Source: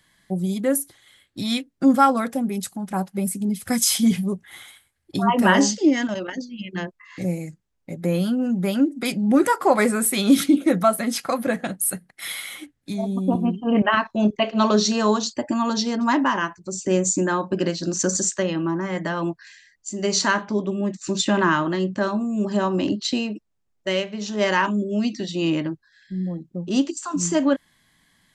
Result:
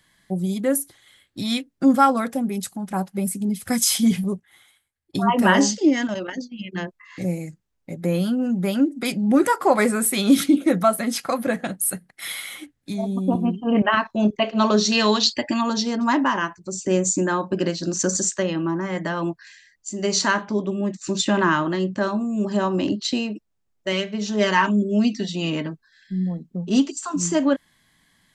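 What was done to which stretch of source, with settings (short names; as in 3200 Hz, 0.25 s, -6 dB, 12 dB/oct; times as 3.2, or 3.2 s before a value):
4.24–6.72 gate -39 dBFS, range -12 dB
14.92–15.61 band shelf 3000 Hz +11.5 dB
23.92–27.1 comb 4.5 ms, depth 58%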